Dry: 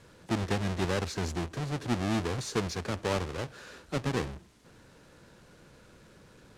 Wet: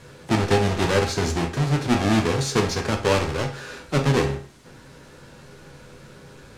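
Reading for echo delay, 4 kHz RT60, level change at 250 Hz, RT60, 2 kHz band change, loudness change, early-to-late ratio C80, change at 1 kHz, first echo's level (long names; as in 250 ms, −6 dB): no echo audible, 0.40 s, +9.5 dB, 0.40 s, +10.5 dB, +10.0 dB, 15.5 dB, +10.5 dB, no echo audible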